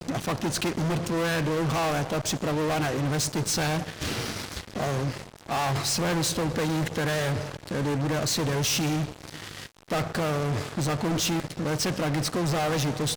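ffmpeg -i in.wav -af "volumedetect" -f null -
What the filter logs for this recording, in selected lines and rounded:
mean_volume: -27.5 dB
max_volume: -21.1 dB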